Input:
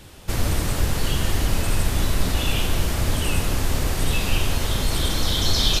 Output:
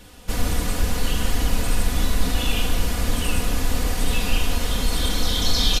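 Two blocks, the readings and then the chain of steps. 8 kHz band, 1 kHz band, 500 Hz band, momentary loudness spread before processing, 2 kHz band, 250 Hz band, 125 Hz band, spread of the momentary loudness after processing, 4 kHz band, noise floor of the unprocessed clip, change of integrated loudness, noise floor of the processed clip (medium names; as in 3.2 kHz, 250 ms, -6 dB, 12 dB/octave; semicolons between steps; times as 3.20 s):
-0.5 dB, -0.5 dB, -1.0 dB, 3 LU, -0.5 dB, +0.5 dB, -3.0 dB, 3 LU, -0.5 dB, -34 dBFS, -0.5 dB, -36 dBFS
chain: comb 4.1 ms; trim -2 dB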